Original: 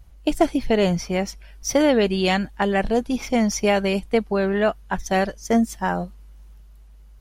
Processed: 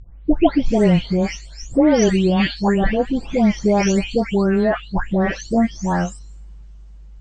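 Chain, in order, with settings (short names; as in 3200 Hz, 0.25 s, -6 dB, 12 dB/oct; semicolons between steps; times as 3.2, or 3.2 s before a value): spectral delay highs late, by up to 0.454 s; steep low-pass 8300 Hz 96 dB/oct; low shelf 340 Hz +8.5 dB; gain +1 dB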